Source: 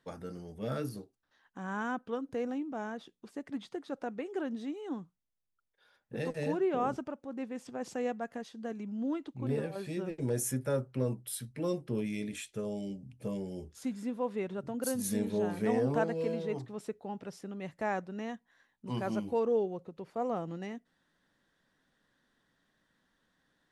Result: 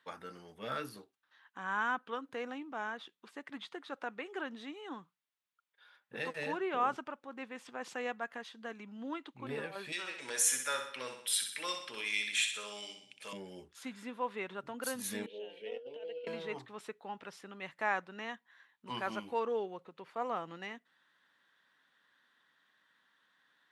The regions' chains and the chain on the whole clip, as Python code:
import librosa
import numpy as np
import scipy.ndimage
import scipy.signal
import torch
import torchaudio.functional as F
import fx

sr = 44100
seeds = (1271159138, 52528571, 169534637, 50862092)

y = fx.chain(x, sr, fx.weighting(curve='ITU-R 468'),
    fx.echo_feedback(ms=63, feedback_pct=52, wet_db=-7.0), at=(9.92, 13.33))
y = fx.chain(y, sr, fx.double_bandpass(hz=1200.0, octaves=2.6),
    fx.over_compress(threshold_db=-36.0, ratio=-0.5), at=(15.26, 16.27))
y = fx.highpass(y, sr, hz=450.0, slope=6)
y = fx.band_shelf(y, sr, hz=1900.0, db=9.0, octaves=2.4)
y = y * 10.0 ** (-3.0 / 20.0)